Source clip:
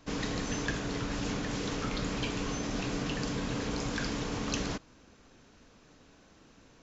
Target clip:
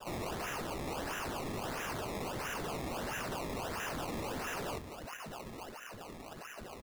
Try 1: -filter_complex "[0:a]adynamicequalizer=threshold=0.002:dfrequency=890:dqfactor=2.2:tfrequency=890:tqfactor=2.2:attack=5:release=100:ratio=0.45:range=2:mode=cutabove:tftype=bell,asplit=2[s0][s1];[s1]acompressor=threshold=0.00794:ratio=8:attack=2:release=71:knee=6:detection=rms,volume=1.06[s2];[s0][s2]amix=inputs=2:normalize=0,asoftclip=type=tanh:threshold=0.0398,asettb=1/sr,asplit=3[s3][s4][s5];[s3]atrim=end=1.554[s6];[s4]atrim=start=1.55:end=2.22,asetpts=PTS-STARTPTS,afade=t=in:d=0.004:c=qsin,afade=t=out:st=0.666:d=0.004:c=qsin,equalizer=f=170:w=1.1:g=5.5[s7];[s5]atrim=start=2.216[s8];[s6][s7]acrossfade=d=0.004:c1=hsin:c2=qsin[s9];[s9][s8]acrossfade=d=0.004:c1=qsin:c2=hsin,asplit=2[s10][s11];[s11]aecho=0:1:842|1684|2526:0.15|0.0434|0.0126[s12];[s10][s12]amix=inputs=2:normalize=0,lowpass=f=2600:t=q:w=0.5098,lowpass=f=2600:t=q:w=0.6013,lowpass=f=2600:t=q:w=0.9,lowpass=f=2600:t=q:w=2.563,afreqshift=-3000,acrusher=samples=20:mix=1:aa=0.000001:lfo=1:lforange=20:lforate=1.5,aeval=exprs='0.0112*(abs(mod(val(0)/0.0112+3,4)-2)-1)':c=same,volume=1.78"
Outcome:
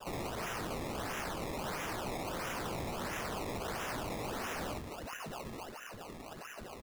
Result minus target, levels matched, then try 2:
saturation: distortion -6 dB
-filter_complex "[0:a]adynamicequalizer=threshold=0.002:dfrequency=890:dqfactor=2.2:tfrequency=890:tqfactor=2.2:attack=5:release=100:ratio=0.45:range=2:mode=cutabove:tftype=bell,asplit=2[s0][s1];[s1]acompressor=threshold=0.00794:ratio=8:attack=2:release=71:knee=6:detection=rms,volume=1.06[s2];[s0][s2]amix=inputs=2:normalize=0,asoftclip=type=tanh:threshold=0.0178,asettb=1/sr,asplit=3[s3][s4][s5];[s3]atrim=end=1.554[s6];[s4]atrim=start=1.55:end=2.22,asetpts=PTS-STARTPTS,afade=t=in:d=0.004:c=qsin,afade=t=out:st=0.666:d=0.004:c=qsin,equalizer=f=170:w=1.1:g=5.5[s7];[s5]atrim=start=2.216[s8];[s6][s7]acrossfade=d=0.004:c1=hsin:c2=qsin[s9];[s9][s8]acrossfade=d=0.004:c1=qsin:c2=hsin,asplit=2[s10][s11];[s11]aecho=0:1:842|1684|2526:0.15|0.0434|0.0126[s12];[s10][s12]amix=inputs=2:normalize=0,lowpass=f=2600:t=q:w=0.5098,lowpass=f=2600:t=q:w=0.6013,lowpass=f=2600:t=q:w=0.9,lowpass=f=2600:t=q:w=2.563,afreqshift=-3000,acrusher=samples=20:mix=1:aa=0.000001:lfo=1:lforange=20:lforate=1.5,aeval=exprs='0.0112*(abs(mod(val(0)/0.0112+3,4)-2)-1)':c=same,volume=1.78"

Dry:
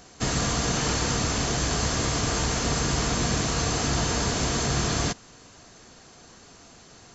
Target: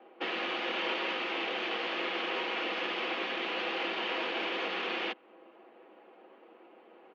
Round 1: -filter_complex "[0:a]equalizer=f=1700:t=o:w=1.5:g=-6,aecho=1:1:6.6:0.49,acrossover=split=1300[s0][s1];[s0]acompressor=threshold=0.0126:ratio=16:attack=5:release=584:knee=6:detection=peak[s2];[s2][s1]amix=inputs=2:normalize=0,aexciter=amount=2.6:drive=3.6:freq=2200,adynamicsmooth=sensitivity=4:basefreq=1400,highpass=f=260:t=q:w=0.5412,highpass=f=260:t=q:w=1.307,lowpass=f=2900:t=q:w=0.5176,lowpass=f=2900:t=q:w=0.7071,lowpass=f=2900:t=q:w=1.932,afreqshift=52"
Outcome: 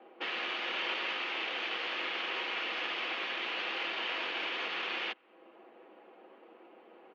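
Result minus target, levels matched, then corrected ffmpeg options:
compression: peak gain reduction +9.5 dB
-filter_complex "[0:a]equalizer=f=1700:t=o:w=1.5:g=-6,aecho=1:1:6.6:0.49,acrossover=split=1300[s0][s1];[s0]acompressor=threshold=0.0398:ratio=16:attack=5:release=584:knee=6:detection=peak[s2];[s2][s1]amix=inputs=2:normalize=0,aexciter=amount=2.6:drive=3.6:freq=2200,adynamicsmooth=sensitivity=4:basefreq=1400,highpass=f=260:t=q:w=0.5412,highpass=f=260:t=q:w=1.307,lowpass=f=2900:t=q:w=0.5176,lowpass=f=2900:t=q:w=0.7071,lowpass=f=2900:t=q:w=1.932,afreqshift=52"

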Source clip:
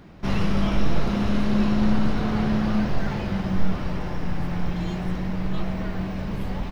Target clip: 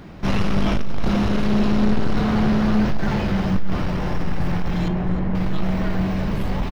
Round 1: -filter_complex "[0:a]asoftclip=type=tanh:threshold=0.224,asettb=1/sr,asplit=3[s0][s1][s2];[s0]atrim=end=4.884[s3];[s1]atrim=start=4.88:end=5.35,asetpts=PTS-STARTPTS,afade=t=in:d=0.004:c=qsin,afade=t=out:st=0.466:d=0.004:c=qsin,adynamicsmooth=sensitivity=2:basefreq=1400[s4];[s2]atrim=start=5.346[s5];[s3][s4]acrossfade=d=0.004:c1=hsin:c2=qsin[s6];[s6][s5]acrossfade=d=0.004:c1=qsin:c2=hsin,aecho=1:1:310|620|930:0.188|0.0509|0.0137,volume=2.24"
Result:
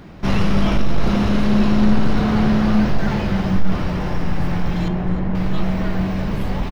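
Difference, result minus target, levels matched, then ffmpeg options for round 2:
saturation: distortion -8 dB
-filter_complex "[0:a]asoftclip=type=tanh:threshold=0.1,asettb=1/sr,asplit=3[s0][s1][s2];[s0]atrim=end=4.884[s3];[s1]atrim=start=4.88:end=5.35,asetpts=PTS-STARTPTS,afade=t=in:d=0.004:c=qsin,afade=t=out:st=0.466:d=0.004:c=qsin,adynamicsmooth=sensitivity=2:basefreq=1400[s4];[s2]atrim=start=5.346[s5];[s3][s4]acrossfade=d=0.004:c1=hsin:c2=qsin[s6];[s6][s5]acrossfade=d=0.004:c1=qsin:c2=hsin,aecho=1:1:310|620|930:0.188|0.0509|0.0137,volume=2.24"

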